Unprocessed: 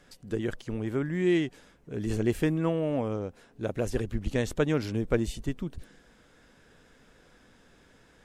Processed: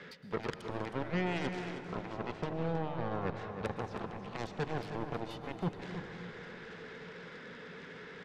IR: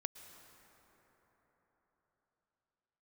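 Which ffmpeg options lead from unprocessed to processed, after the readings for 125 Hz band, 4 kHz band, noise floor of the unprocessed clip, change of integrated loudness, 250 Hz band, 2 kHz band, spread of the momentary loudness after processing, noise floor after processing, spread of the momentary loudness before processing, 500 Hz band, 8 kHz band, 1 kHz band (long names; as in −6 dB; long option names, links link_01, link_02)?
−7.5 dB, −4.0 dB, −60 dBFS, −9.0 dB, −10.0 dB, −3.0 dB, 12 LU, −49 dBFS, 10 LU, −8.5 dB, −13.5 dB, +3.0 dB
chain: -filter_complex "[0:a]acrossover=split=350|3000[link_01][link_02][link_03];[link_02]acompressor=threshold=-42dB:ratio=6[link_04];[link_01][link_04][link_03]amix=inputs=3:normalize=0,alimiter=limit=-22.5dB:level=0:latency=1:release=110,areverse,acompressor=threshold=-45dB:ratio=10,areverse,highpass=170,equalizer=frequency=170:width_type=q:width=4:gain=8,equalizer=frequency=310:width_type=q:width=4:gain=-7,equalizer=frequency=440:width_type=q:width=4:gain=9,equalizer=frequency=710:width_type=q:width=4:gain=-8,equalizer=frequency=1300:width_type=q:width=4:gain=3,equalizer=frequency=2000:width_type=q:width=4:gain=8,lowpass=frequency=4200:width=0.5412,lowpass=frequency=4200:width=1.3066,aeval=exprs='0.0178*(cos(1*acos(clip(val(0)/0.0178,-1,1)))-cos(1*PI/2))+0.00501*(cos(7*acos(clip(val(0)/0.0178,-1,1)))-cos(7*PI/2))':channel_layout=same,aecho=1:1:317:0.316[link_05];[1:a]atrim=start_sample=2205[link_06];[link_05][link_06]afir=irnorm=-1:irlink=0,volume=13.5dB"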